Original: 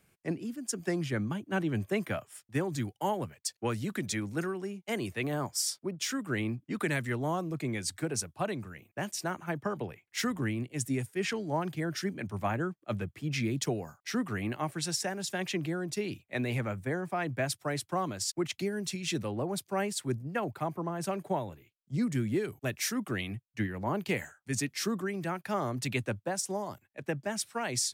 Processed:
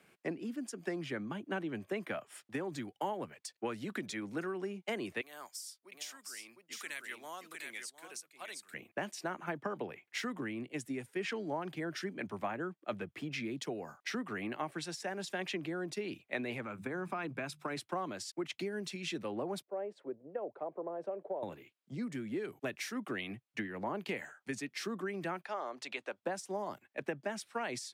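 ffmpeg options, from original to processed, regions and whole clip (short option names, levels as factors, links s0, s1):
-filter_complex "[0:a]asettb=1/sr,asplit=3[s0][s1][s2];[s0]atrim=end=5.214[s3];[s1]atrim=start=5.21:end=8.74,asetpts=PTS-STARTPTS,afade=t=in:d=0.004:c=qsin,afade=t=out:st=3.526:d=0.004:c=qsin,aderivative,aecho=1:1:707:0.447,atrim=end_sample=155673[s4];[s2]atrim=start=8.736[s5];[s3][s4]acrossfade=d=0.004:c1=hsin:c2=qsin[s6];[s6][s5]acrossfade=d=0.004:c1=qsin:c2=hsin,asettb=1/sr,asplit=3[s7][s8][s9];[s7]atrim=end=16.644[s10];[s8]atrim=start=16.64:end=17.77,asetpts=PTS-STARTPTS,afade=t=in:d=0.004:c=qsin,afade=t=out:st=1.126:d=0.004:c=qsin,bandreject=f=50:t=h:w=6,bandreject=f=100:t=h:w=6,bandreject=f=150:t=h:w=6,bandreject=f=200:t=h:w=6,aecho=1:1:0.8:0.39,atrim=end_sample=49833,acompressor=threshold=0.0224:ratio=6:attack=3.2:release=140:knee=1:detection=peak[s11];[s9]atrim=start=17.766[s12];[s10][s11]acrossfade=d=0.004:c1=hsin:c2=qsin[s13];[s13][s12]acrossfade=d=0.004:c1=qsin:c2=hsin,asettb=1/sr,asplit=3[s14][s15][s16];[s14]atrim=end=19.624[s17];[s15]atrim=start=19.62:end=21.43,asetpts=PTS-STARTPTS,afade=t=in:d=0.004:c=qsin,afade=t=out:st=1.806:d=0.004:c=qsin,bandpass=f=520:t=q:w=3.5,acompressor=threshold=0.00708:ratio=1.5:attack=3.2:release=140:knee=1:detection=peak[s18];[s16]atrim=start=21.426[s19];[s17][s18]acrossfade=d=0.004:c1=hsin:c2=qsin[s20];[s20][s19]acrossfade=d=0.004:c1=qsin:c2=hsin,asettb=1/sr,asplit=3[s21][s22][s23];[s21]atrim=end=25.454[s24];[s22]atrim=start=25.45:end=26.23,asetpts=PTS-STARTPTS,afade=t=in:d=0.004:c=qsin,afade=t=out:st=0.776:d=0.004:c=qsin,equalizer=f=2000:t=o:w=2.3:g=-7,acompressor=threshold=0.0141:ratio=1.5:attack=3.2:release=140:knee=1:detection=peak,highpass=660,lowpass=5800[s25];[s23]atrim=start=26.226[s26];[s24][s25]acrossfade=d=0.004:c1=hsin:c2=qsin[s27];[s27][s26]acrossfade=d=0.004:c1=qsin:c2=hsin,equalizer=f=9900:t=o:w=1.3:g=5,acompressor=threshold=0.01:ratio=5,acrossover=split=190 4200:gain=0.112 1 0.2[s28][s29][s30];[s28][s29][s30]amix=inputs=3:normalize=0,volume=2"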